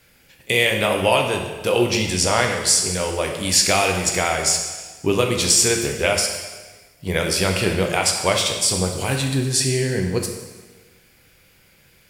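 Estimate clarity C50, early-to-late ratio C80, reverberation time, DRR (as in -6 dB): 5.0 dB, 7.0 dB, 1.4 s, 2.0 dB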